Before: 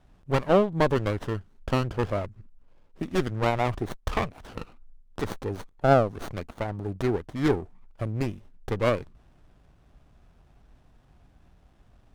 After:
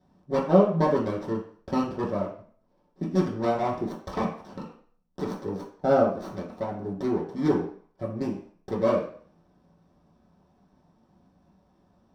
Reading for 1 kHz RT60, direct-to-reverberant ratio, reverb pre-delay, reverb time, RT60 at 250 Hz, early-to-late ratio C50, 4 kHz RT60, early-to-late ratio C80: 0.50 s, -7.0 dB, 3 ms, 0.50 s, 0.45 s, 7.0 dB, 0.50 s, 10.5 dB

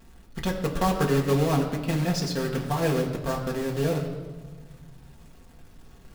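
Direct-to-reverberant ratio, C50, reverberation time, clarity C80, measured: -1.5 dB, 7.5 dB, 1.4 s, 8.5 dB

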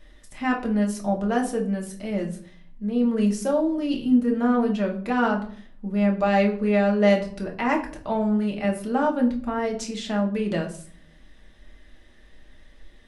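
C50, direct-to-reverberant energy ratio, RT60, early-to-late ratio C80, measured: 10.0 dB, -1.0 dB, 0.55 s, 15.5 dB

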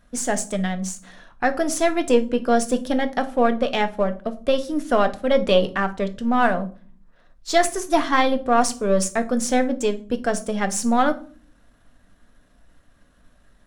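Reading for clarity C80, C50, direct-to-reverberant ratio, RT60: 22.0 dB, 16.0 dB, 8.0 dB, 0.40 s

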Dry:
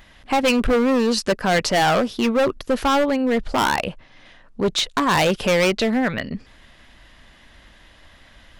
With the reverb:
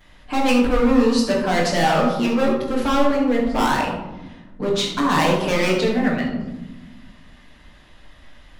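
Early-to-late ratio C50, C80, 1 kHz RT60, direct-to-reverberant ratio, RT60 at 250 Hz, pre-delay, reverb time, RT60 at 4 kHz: 3.0 dB, 6.0 dB, 1.0 s, -11.0 dB, 1.9 s, 7 ms, 1.1 s, 0.50 s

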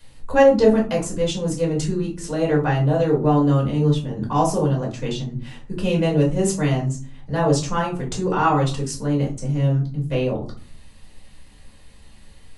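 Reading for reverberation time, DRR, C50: 0.40 s, -3.0 dB, 9.0 dB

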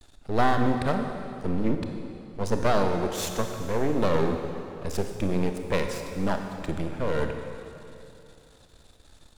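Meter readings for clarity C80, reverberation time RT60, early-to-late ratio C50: 6.0 dB, 2.8 s, 5.5 dB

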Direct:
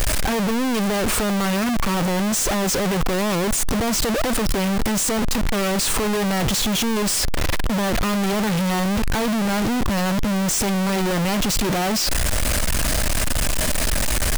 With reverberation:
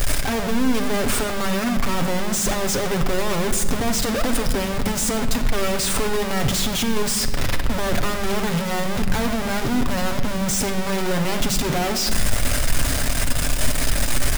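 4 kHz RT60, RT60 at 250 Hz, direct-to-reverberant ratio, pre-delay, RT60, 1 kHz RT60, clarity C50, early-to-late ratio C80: 0.90 s, 2.0 s, 4.0 dB, 7 ms, 1.4 s, 1.3 s, 8.5 dB, 10.0 dB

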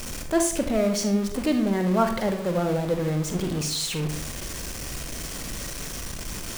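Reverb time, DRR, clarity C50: 0.60 s, 5.5 dB, 8.0 dB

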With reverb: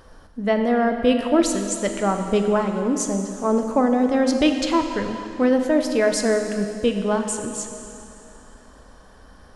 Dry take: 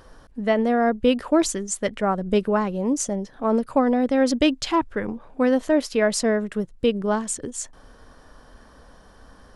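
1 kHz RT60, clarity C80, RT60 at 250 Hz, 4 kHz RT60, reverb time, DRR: 2.8 s, 7.0 dB, 2.8 s, 2.6 s, 2.8 s, 5.0 dB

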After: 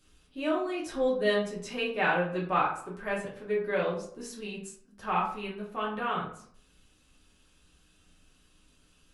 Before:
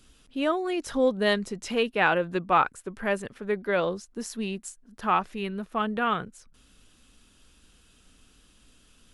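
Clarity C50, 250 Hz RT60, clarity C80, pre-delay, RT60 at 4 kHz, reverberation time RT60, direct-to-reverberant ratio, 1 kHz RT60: 6.5 dB, 0.65 s, 10.0 dB, 3 ms, 0.35 s, 0.60 s, -5.0 dB, 0.60 s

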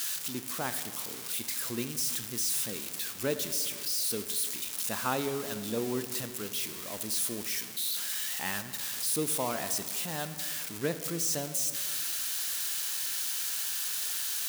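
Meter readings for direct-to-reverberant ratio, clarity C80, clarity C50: 9.5 dB, 12.0 dB, 11.0 dB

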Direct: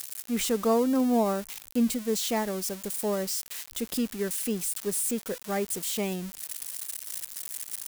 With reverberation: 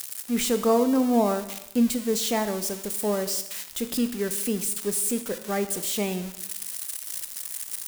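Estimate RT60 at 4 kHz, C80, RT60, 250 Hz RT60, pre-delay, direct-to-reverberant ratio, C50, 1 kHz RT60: 0.85 s, 13.5 dB, 0.85 s, 0.80 s, 23 ms, 9.5 dB, 11.5 dB, 0.85 s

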